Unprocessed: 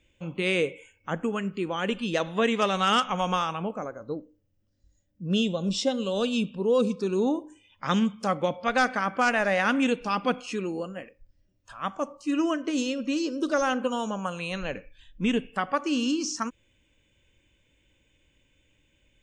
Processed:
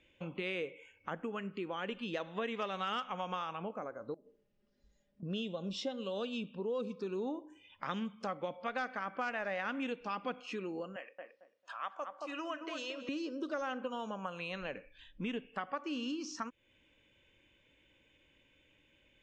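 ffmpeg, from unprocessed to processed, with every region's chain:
-filter_complex "[0:a]asettb=1/sr,asplit=3[s0][s1][s2];[s0]atrim=end=4.144[s3];[s1]atrim=start=4.14:end=5.23,asetpts=PTS-STARTPTS,afade=t=in:d=0.004:c=qsin,afade=t=out:st=1.086:d=0.004:c=qsin,equalizer=f=400:t=o:w=0.43:g=5,aecho=1:1:4.9:0.87,atrim=end_sample=48069,acompressor=threshold=0.00355:ratio=12:attack=3.2:release=140:knee=1:detection=peak[s4];[s2]atrim=start=5.226[s5];[s3][s4]acrossfade=d=0.004:c1=hsin:c2=qsin[s6];[s6][s5]acrossfade=d=0.004:c1=qsin:c2=hsin,asettb=1/sr,asplit=3[s7][s8][s9];[s7]atrim=end=10.964[s10];[s8]atrim=start=10.96:end=13.09,asetpts=PTS-STARTPTS,afade=t=in:d=0.004:c=qsin,afade=t=out:st=2.126:d=0.004:c=qsin,highpass=600,asplit=2[s11][s12];[s12]adelay=223,lowpass=f=990:p=1,volume=0.631,asplit=2[s13][s14];[s14]adelay=223,lowpass=f=990:p=1,volume=0.24,asplit=2[s15][s16];[s16]adelay=223,lowpass=f=990:p=1,volume=0.24[s17];[s11][s13][s15][s17]amix=inputs=4:normalize=0,atrim=end_sample=93933[s18];[s9]atrim=start=13.086[s19];[s10][s18]acrossfade=d=0.004:c1=hsin:c2=qsin[s20];[s20][s19]acrossfade=d=0.004:c1=qsin:c2=hsin,lowpass=3800,lowshelf=f=150:g=-12,acompressor=threshold=0.00708:ratio=2.5,volume=1.19"

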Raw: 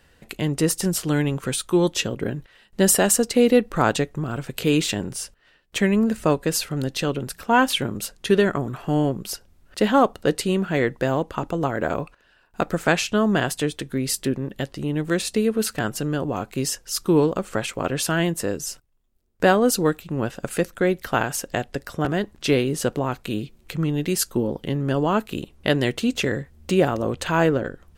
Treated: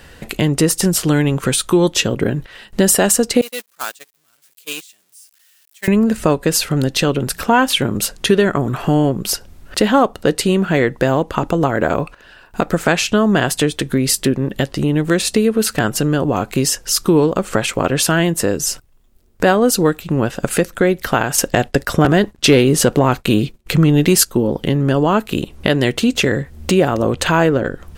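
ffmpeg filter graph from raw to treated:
-filter_complex "[0:a]asettb=1/sr,asplit=3[s0][s1][s2];[s0]atrim=end=3.414[s3];[s1]atrim=start=3.41:end=5.88,asetpts=PTS-STARTPTS,afade=t=in:d=0.004:c=qsin,afade=t=out:st=2.466:d=0.004:c=qsin,aeval=exprs='val(0)+0.5*0.0562*sgn(val(0))':c=same,agate=range=0.02:threshold=0.158:ratio=16:release=100:detection=peak,aderivative[s4];[s2]atrim=start=5.876[s5];[s3][s4]acrossfade=d=0.004:c1=hsin:c2=qsin[s6];[s6][s5]acrossfade=d=0.004:c1=qsin:c2=hsin,asettb=1/sr,asplit=3[s7][s8][s9];[s7]atrim=end=21.384[s10];[s8]atrim=start=21.38:end=24.25,asetpts=PTS-STARTPTS,afade=t=in:d=0.004:c=qsin,afade=t=out:st=2.866:d=0.004:c=qsin,acontrast=81,agate=range=0.0224:threshold=0.0224:ratio=3:release=100:detection=peak[s11];[s9]atrim=start=24.246[s12];[s10][s11]acrossfade=d=0.004:c1=hsin:c2=qsin[s13];[s13][s12]acrossfade=d=0.004:c1=qsin:c2=hsin,acompressor=threshold=0.02:ratio=2,alimiter=level_in=6.68:limit=0.891:release=50:level=0:latency=1,volume=0.891"

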